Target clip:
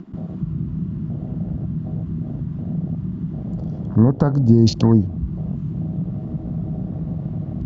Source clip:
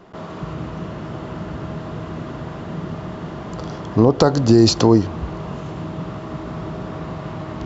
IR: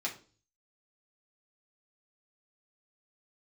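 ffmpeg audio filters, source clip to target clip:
-af "acompressor=mode=upward:threshold=-21dB:ratio=2.5,afwtdn=0.0891,lowshelf=frequency=280:width_type=q:width=1.5:gain=8.5,volume=-6.5dB"

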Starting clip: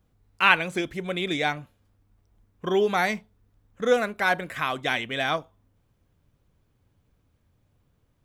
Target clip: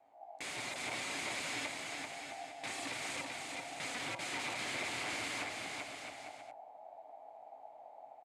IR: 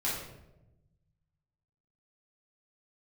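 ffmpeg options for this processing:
-filter_complex "[0:a]acrossover=split=240[link_01][link_02];[link_01]dynaudnorm=framelen=110:gausssize=3:maxgain=12dB[link_03];[link_02]alimiter=limit=-14.5dB:level=0:latency=1[link_04];[link_03][link_04]amix=inputs=2:normalize=0,asettb=1/sr,asplit=3[link_05][link_06][link_07];[link_05]atrim=end=3.914[link_08];[link_06]atrim=start=3.91:end=5.35,asetpts=PTS-STARTPTS,afade=type=in:duration=0.004:curve=qsin,afade=type=out:start_time=1.436:duration=0.004:curve=qsin,acompressor=threshold=-25dB:ratio=6[link_09];[link_07]atrim=start=5.346[link_10];[link_08][link_09]acrossfade=duration=0.004:curve1=hsin:curve2=qsin[link_11];[link_11][link_10]acrossfade=duration=0.004:curve1=qsin:curve2=hsin,asoftclip=type=tanh:threshold=-26dB,aeval=exprs='val(0)*sin(2*PI*740*n/s)':channel_layout=same,flanger=delay=17.5:depth=4.1:speed=0.94,aeval=exprs='(mod(89.1*val(0)+1,2)-1)/89.1':channel_layout=same,highpass=110,equalizer=frequency=120:width_type=q:width=4:gain=6,equalizer=frequency=200:width_type=q:width=4:gain=-4,equalizer=frequency=280:width_type=q:width=4:gain=9,equalizer=frequency=720:width_type=q:width=4:gain=6,equalizer=frequency=2200:width_type=q:width=4:gain=9,equalizer=frequency=5600:width_type=q:width=4:gain=-6,lowpass=frequency=8900:width=0.5412,lowpass=frequency=8900:width=1.3066,aecho=1:1:390|663|854.1|987.9|1082:0.631|0.398|0.251|0.158|0.1,volume=1.5dB"

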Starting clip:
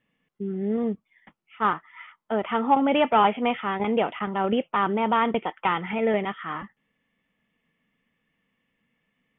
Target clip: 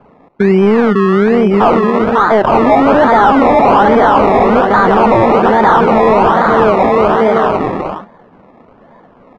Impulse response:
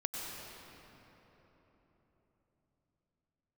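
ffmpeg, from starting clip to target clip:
-filter_complex "[0:a]asplit=2[link_01][link_02];[link_02]acompressor=threshold=-34dB:ratio=6,volume=-0.5dB[link_03];[link_01][link_03]amix=inputs=2:normalize=0,lowshelf=frequency=65:gain=-10.5,aecho=1:1:550|907.5|1140|1291|1389:0.631|0.398|0.251|0.158|0.1,acrusher=samples=23:mix=1:aa=0.000001:lfo=1:lforange=13.8:lforate=1.2,volume=22dB,asoftclip=hard,volume=-22dB,lowpass=1100,lowshelf=frequency=410:gain=-12,alimiter=level_in=32.5dB:limit=-1dB:release=50:level=0:latency=1,volume=-1dB"

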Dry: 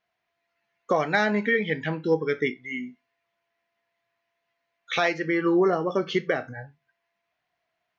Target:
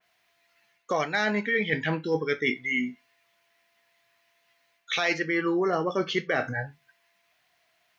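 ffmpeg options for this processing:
ffmpeg -i in.wav -af "highshelf=frequency=2100:gain=11.5,areverse,acompressor=threshold=-28dB:ratio=8,areverse,adynamicequalizer=threshold=0.00562:dfrequency=3000:dqfactor=0.7:tfrequency=3000:tqfactor=0.7:attack=5:release=100:ratio=0.375:range=3:mode=cutabove:tftype=highshelf,volume=5.5dB" out.wav

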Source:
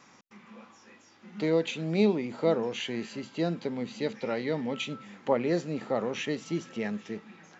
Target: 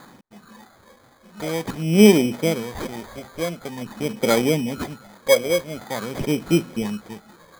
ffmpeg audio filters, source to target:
ffmpeg -i in.wav -af "aphaser=in_gain=1:out_gain=1:delay=1.9:decay=0.72:speed=0.46:type=sinusoidal,acrusher=samples=16:mix=1:aa=0.000001,volume=2.5dB" out.wav

